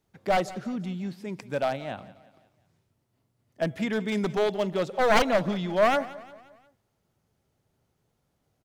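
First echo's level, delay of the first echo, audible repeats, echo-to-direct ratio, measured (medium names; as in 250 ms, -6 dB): -18.5 dB, 177 ms, 3, -17.5 dB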